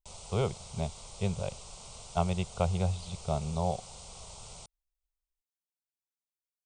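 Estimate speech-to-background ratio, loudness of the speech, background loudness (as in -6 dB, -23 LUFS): 12.5 dB, -34.0 LUFS, -46.5 LUFS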